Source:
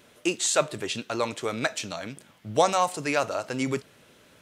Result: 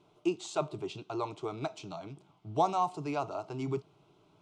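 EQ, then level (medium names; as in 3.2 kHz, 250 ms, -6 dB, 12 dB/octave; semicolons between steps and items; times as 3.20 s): low-pass 1.5 kHz 6 dB/octave; distance through air 52 m; static phaser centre 350 Hz, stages 8; -2.0 dB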